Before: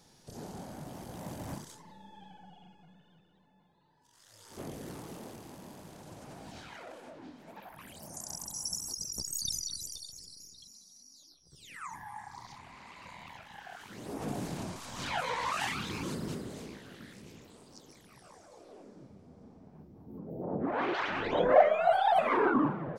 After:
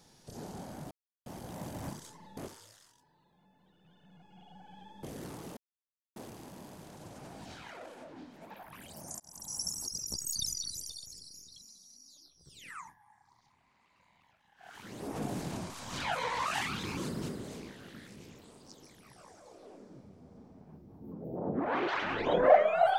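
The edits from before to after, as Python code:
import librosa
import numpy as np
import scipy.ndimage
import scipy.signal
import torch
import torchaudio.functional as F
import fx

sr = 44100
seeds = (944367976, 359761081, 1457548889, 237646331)

y = fx.edit(x, sr, fx.insert_silence(at_s=0.91, length_s=0.35),
    fx.reverse_span(start_s=2.02, length_s=2.66),
    fx.insert_silence(at_s=5.22, length_s=0.59),
    fx.fade_in_span(start_s=8.26, length_s=0.36),
    fx.fade_down_up(start_s=11.78, length_s=2.07, db=-19.0, fade_s=0.23), tone=tone)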